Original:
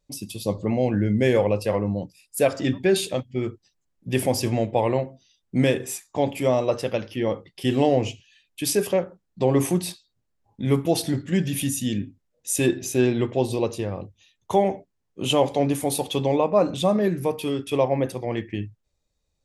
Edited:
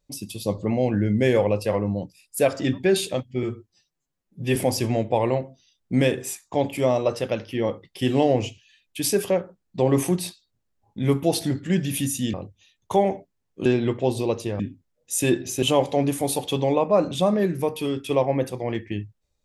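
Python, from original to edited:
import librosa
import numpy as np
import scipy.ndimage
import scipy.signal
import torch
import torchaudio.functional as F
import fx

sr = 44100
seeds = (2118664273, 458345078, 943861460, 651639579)

y = fx.edit(x, sr, fx.stretch_span(start_s=3.43, length_s=0.75, factor=1.5),
    fx.swap(start_s=11.96, length_s=1.03, other_s=13.93, other_length_s=1.32), tone=tone)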